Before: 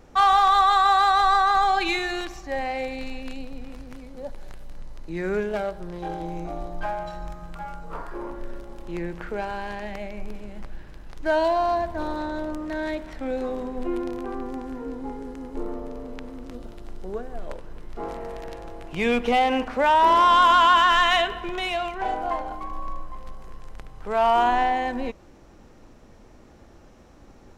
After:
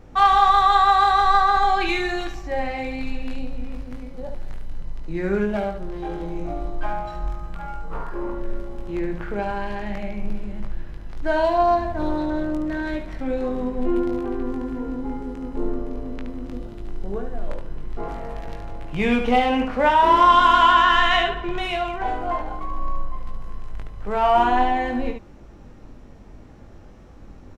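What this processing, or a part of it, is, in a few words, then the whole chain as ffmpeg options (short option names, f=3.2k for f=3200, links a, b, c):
slapback doubling: -filter_complex "[0:a]asettb=1/sr,asplit=3[a][b][c];[a]atrim=end=20.724[d];[b]atrim=start=20.72:end=21.51,asetpts=PTS-STARTPTS,afade=t=in:d=0.004:c=qsin,afade=t=out:st=0.786:d=0.004:c=qsin,lowpass=7.4k[e];[c]atrim=start=21.506[f];[d][e]acrossfade=d=0.004:c1=hsin:c2=qsin[g];[g][f]acrossfade=d=0.004:c1=qsin:c2=hsin,bass=f=250:g=6,treble=f=4k:g=-5,asplit=3[h][i][j];[i]adelay=20,volume=-5.5dB[k];[j]adelay=72,volume=-6.5dB[l];[h][k][l]amix=inputs=3:normalize=0"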